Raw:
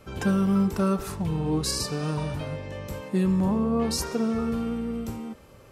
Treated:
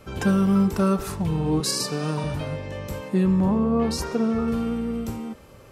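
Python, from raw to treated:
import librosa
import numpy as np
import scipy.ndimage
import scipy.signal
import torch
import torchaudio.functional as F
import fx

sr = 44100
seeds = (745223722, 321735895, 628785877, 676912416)

y = fx.highpass(x, sr, hz=140.0, slope=24, at=(1.6, 2.24))
y = fx.high_shelf(y, sr, hz=4700.0, db=-8.5, at=(3.14, 4.48))
y = y * librosa.db_to_amplitude(3.0)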